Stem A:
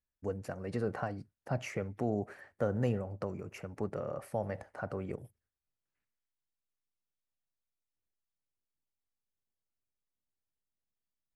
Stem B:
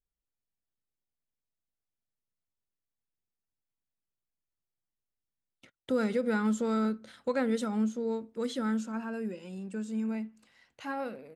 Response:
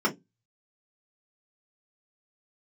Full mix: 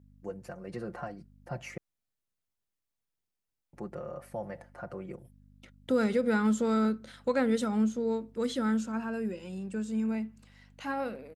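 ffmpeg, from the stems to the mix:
-filter_complex "[0:a]aecho=1:1:5.7:0.73,aeval=exprs='val(0)+0.00355*(sin(2*PI*50*n/s)+sin(2*PI*2*50*n/s)/2+sin(2*PI*3*50*n/s)/3+sin(2*PI*4*50*n/s)/4+sin(2*PI*5*50*n/s)/5)':c=same,highpass=f=88:p=1,volume=0.631,asplit=3[s0][s1][s2];[s0]atrim=end=1.78,asetpts=PTS-STARTPTS,afade=t=out:st=1.776:d=0.004:c=hsin[s3];[s1]atrim=start=1.78:end=3.73,asetpts=PTS-STARTPTS,volume=0[s4];[s2]atrim=start=3.73,asetpts=PTS-STARTPTS,afade=t=in:d=0.004:c=hsin[s5];[s3][s4][s5]concat=n=3:v=0:a=1[s6];[1:a]volume=1.26[s7];[s6][s7]amix=inputs=2:normalize=0"

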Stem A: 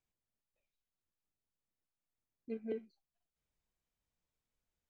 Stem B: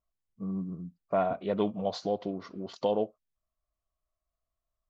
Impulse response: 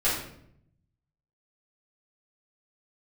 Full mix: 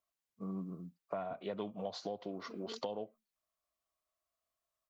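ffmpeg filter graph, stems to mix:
-filter_complex "[0:a]aemphasis=mode=production:type=75fm,volume=0.376,asplit=2[s0][s1];[s1]volume=0.119[s2];[1:a]highpass=f=520:p=1,volume=1.33,asplit=2[s3][s4];[s4]apad=whole_len=215991[s5];[s0][s5]sidechaingate=range=0.0224:threshold=0.00398:ratio=16:detection=peak[s6];[s2]aecho=0:1:357:1[s7];[s6][s3][s7]amix=inputs=3:normalize=0,acrossover=split=160[s8][s9];[s9]acompressor=threshold=0.0141:ratio=10[s10];[s8][s10]amix=inputs=2:normalize=0"

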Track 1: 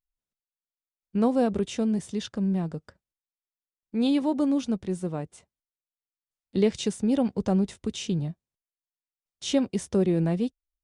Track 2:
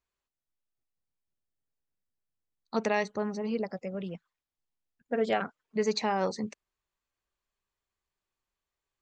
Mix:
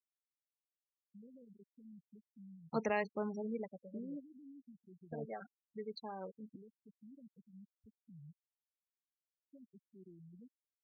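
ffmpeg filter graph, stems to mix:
-filter_complex "[0:a]acompressor=threshold=0.0282:ratio=6,alimiter=level_in=3.35:limit=0.0631:level=0:latency=1:release=76,volume=0.299,volume=0.631[s0];[1:a]volume=0.473,afade=t=out:st=3.36:d=0.51:silence=0.316228,asplit=2[s1][s2];[s2]apad=whole_len=477926[s3];[s0][s3]sidechaingate=range=0.282:threshold=0.00112:ratio=16:detection=peak[s4];[s4][s1]amix=inputs=2:normalize=0,afftfilt=real='re*gte(hypot(re,im),0.0112)':imag='im*gte(hypot(re,im),0.0112)':win_size=1024:overlap=0.75"

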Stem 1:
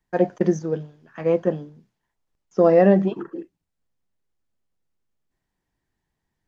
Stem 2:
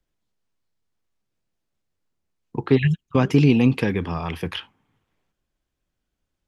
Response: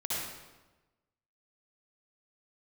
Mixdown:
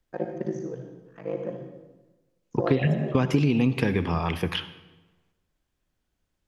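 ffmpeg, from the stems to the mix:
-filter_complex "[0:a]aeval=exprs='val(0)*sin(2*PI*26*n/s)':c=same,volume=0.266,asplit=2[s0][s1];[s1]volume=0.447[s2];[1:a]volume=1.06,asplit=2[s3][s4];[s4]volume=0.119[s5];[2:a]atrim=start_sample=2205[s6];[s2][s5]amix=inputs=2:normalize=0[s7];[s7][s6]afir=irnorm=-1:irlink=0[s8];[s0][s3][s8]amix=inputs=3:normalize=0,acompressor=threshold=0.126:ratio=6"

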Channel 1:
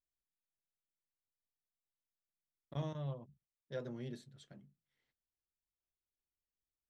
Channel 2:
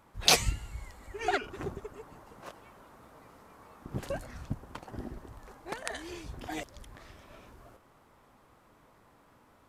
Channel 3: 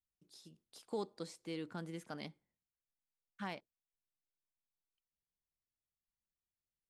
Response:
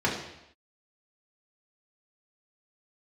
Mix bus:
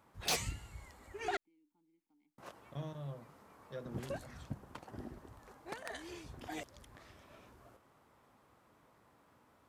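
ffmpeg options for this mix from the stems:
-filter_complex "[0:a]volume=0.708[s0];[1:a]highpass=64,volume=0.531,asplit=3[s1][s2][s3];[s1]atrim=end=1.37,asetpts=PTS-STARTPTS,afade=t=out:st=1.366:d=0.004:c=hsin[s4];[s2]atrim=start=1.37:end=2.38,asetpts=PTS-STARTPTS,volume=0[s5];[s3]atrim=start=2.38,asetpts=PTS-STARTPTS,afade=t=in:d=0.004:c=hsin[s6];[s4][s5][s6]concat=n=3:v=0:a=1[s7];[2:a]asplit=3[s8][s9][s10];[s8]bandpass=f=300:t=q:w=8,volume=1[s11];[s9]bandpass=f=870:t=q:w=8,volume=0.501[s12];[s10]bandpass=f=2240:t=q:w=8,volume=0.355[s13];[s11][s12][s13]amix=inputs=3:normalize=0,acompressor=threshold=0.00126:ratio=2.5,volume=0.15[s14];[s0][s7][s14]amix=inputs=3:normalize=0,asoftclip=type=tanh:threshold=0.0398"

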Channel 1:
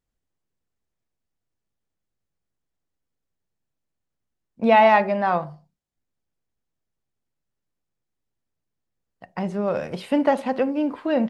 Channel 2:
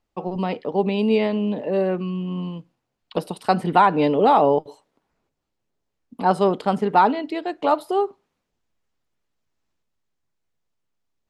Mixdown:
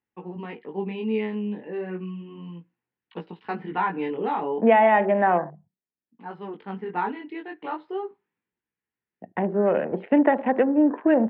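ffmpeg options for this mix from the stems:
-filter_complex "[0:a]acrossover=split=270|1100|3500[s0][s1][s2][s3];[s0]acompressor=threshold=0.00501:ratio=4[s4];[s1]acompressor=threshold=0.0891:ratio=4[s5];[s2]acompressor=threshold=0.0398:ratio=4[s6];[s3]acompressor=threshold=0.00501:ratio=4[s7];[s4][s5][s6][s7]amix=inputs=4:normalize=0,equalizer=f=250:w=0.5:g=10.5,afwtdn=0.0158,volume=1.12,asplit=2[s8][s9];[1:a]equalizer=f=640:w=3.7:g=-15,flanger=delay=16.5:depth=7.3:speed=0.34,volume=0.708[s10];[s9]apad=whole_len=497915[s11];[s10][s11]sidechaincompress=threshold=0.0178:ratio=3:attack=5.5:release=1100[s12];[s8][s12]amix=inputs=2:normalize=0,highpass=130,equalizer=f=140:t=q:w=4:g=-6,equalizer=f=260:t=q:w=4:g=-4,equalizer=f=540:t=q:w=4:g=-4,equalizer=f=1200:t=q:w=4:g=-6,equalizer=f=1800:t=q:w=4:g=5,lowpass=f=2700:w=0.5412,lowpass=f=2700:w=1.3066"

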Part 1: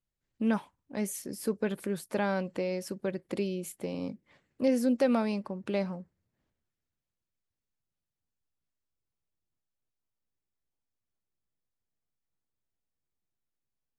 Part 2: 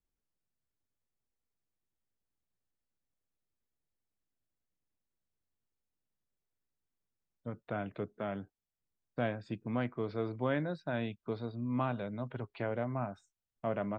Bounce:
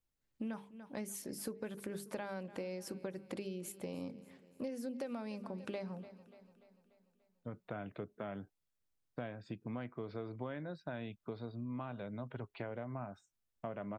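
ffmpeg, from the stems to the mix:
-filter_complex "[0:a]bandreject=f=50:t=h:w=6,bandreject=f=100:t=h:w=6,bandreject=f=150:t=h:w=6,bandreject=f=200:t=h:w=6,bandreject=f=250:t=h:w=6,bandreject=f=300:t=h:w=6,bandreject=f=350:t=h:w=6,bandreject=f=400:t=h:w=6,bandreject=f=450:t=h:w=6,volume=0.708,asplit=2[s0][s1];[s1]volume=0.0794[s2];[1:a]volume=0.794[s3];[s2]aecho=0:1:292|584|876|1168|1460|1752|2044|2336:1|0.53|0.281|0.149|0.0789|0.0418|0.0222|0.0117[s4];[s0][s3][s4]amix=inputs=3:normalize=0,acompressor=threshold=0.0126:ratio=10"

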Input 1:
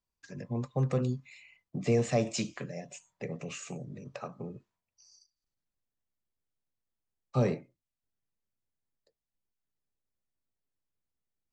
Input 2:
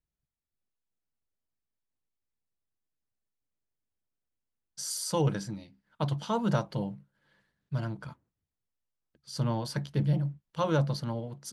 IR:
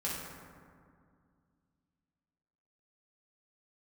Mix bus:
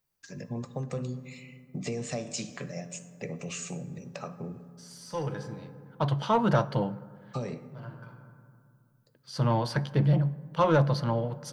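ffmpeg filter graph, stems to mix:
-filter_complex "[0:a]aemphasis=mode=production:type=50kf,acompressor=threshold=0.0282:ratio=12,volume=0.944,asplit=3[s0][s1][s2];[s1]volume=0.211[s3];[1:a]equalizer=f=120:t=o:w=0.53:g=7.5,asplit=2[s4][s5];[s5]highpass=f=720:p=1,volume=7.08,asoftclip=type=tanh:threshold=0.282[s6];[s4][s6]amix=inputs=2:normalize=0,lowpass=f=1500:p=1,volume=0.501,volume=1,asplit=2[s7][s8];[s8]volume=0.0944[s9];[s2]apad=whole_len=508172[s10];[s7][s10]sidechaincompress=threshold=0.00112:ratio=10:attack=16:release=1120[s11];[2:a]atrim=start_sample=2205[s12];[s3][s9]amix=inputs=2:normalize=0[s13];[s13][s12]afir=irnorm=-1:irlink=0[s14];[s0][s11][s14]amix=inputs=3:normalize=0,equalizer=f=7300:w=6.7:g=-3"

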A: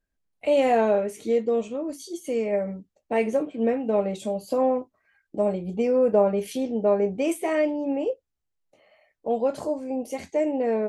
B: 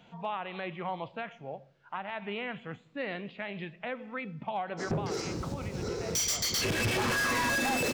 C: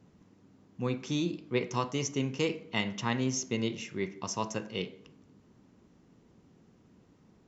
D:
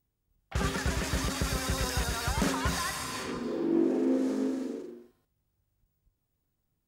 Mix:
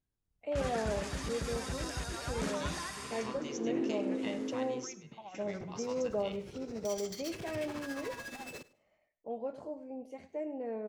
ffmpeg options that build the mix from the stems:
-filter_complex "[0:a]aemphasis=mode=reproduction:type=75fm,volume=0.178,asplit=3[s0][s1][s2];[s1]volume=0.168[s3];[1:a]alimiter=level_in=2.24:limit=0.0631:level=0:latency=1:release=352,volume=0.447,tremolo=f=14:d=0.65,adelay=700,volume=0.447,asplit=2[s4][s5];[s5]volume=0.1[s6];[2:a]equalizer=f=200:w=0.51:g=-12,acompressor=threshold=0.00562:ratio=2.5,adelay=1500,volume=0.841,asplit=2[s7][s8];[s8]volume=0.133[s9];[3:a]lowpass=f=11000:w=0.5412,lowpass=f=11000:w=1.3066,volume=0.398[s10];[s2]apad=whole_len=395904[s11];[s7][s11]sidechaingate=range=0.2:threshold=0.001:ratio=16:detection=peak[s12];[s3][s6][s9]amix=inputs=3:normalize=0,aecho=0:1:102|204|306:1|0.17|0.0289[s13];[s0][s4][s12][s10][s13]amix=inputs=5:normalize=0"

